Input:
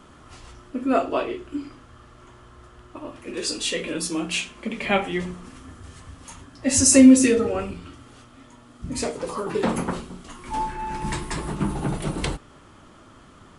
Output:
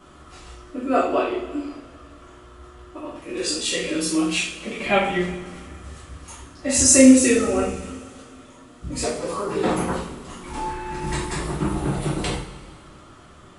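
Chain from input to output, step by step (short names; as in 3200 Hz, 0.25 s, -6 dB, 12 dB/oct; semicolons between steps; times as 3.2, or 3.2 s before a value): two-slope reverb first 0.47 s, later 2.4 s, from -18 dB, DRR -6 dB; gain -4.5 dB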